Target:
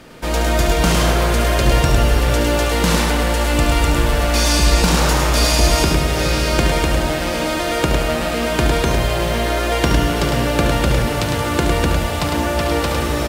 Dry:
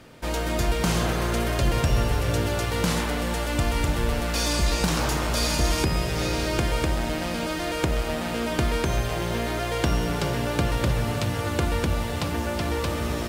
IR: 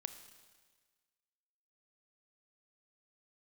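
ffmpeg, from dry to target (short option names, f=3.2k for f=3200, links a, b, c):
-filter_complex "[0:a]equalizer=f=99:w=3.8:g=-8,aecho=1:1:105:0.596,asplit=2[a][b];[1:a]atrim=start_sample=2205,adelay=72[c];[b][c]afir=irnorm=-1:irlink=0,volume=-5dB[d];[a][d]amix=inputs=2:normalize=0,volume=7dB"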